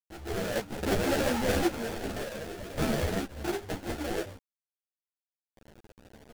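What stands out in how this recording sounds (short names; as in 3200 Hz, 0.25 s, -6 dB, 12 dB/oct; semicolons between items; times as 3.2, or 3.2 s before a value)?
aliases and images of a low sample rate 1100 Hz, jitter 20%; random-step tremolo 1.8 Hz, depth 75%; a quantiser's noise floor 8-bit, dither none; a shimmering, thickened sound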